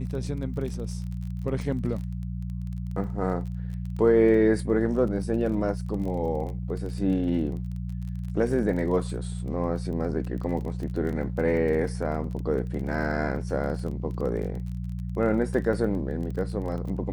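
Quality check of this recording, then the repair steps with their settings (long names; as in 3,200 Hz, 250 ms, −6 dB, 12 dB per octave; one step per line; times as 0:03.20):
surface crackle 24 per second −34 dBFS
mains hum 60 Hz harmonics 3 −32 dBFS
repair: click removal
hum removal 60 Hz, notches 3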